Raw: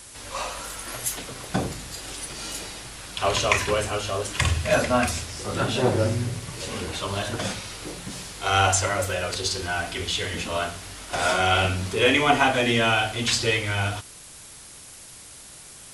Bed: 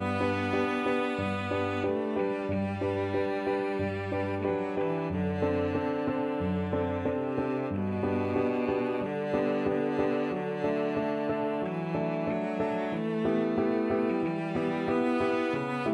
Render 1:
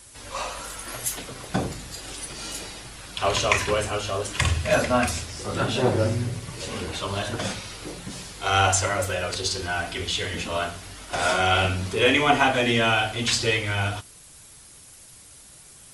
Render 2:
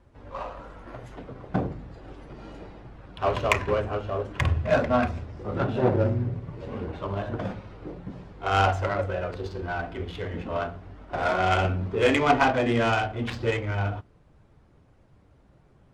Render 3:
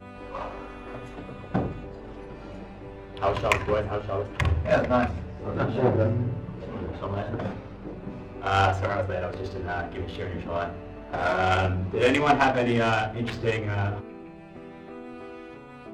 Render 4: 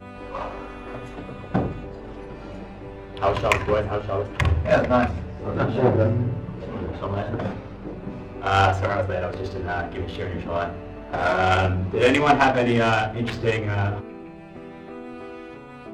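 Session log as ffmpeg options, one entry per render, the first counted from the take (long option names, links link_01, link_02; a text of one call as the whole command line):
ffmpeg -i in.wav -af "afftdn=noise_reduction=6:noise_floor=-45" out.wav
ffmpeg -i in.wav -af "adynamicsmooth=sensitivity=0.5:basefreq=950" out.wav
ffmpeg -i in.wav -i bed.wav -filter_complex "[1:a]volume=-13.5dB[link_01];[0:a][link_01]amix=inputs=2:normalize=0" out.wav
ffmpeg -i in.wav -af "volume=3.5dB,alimiter=limit=-3dB:level=0:latency=1" out.wav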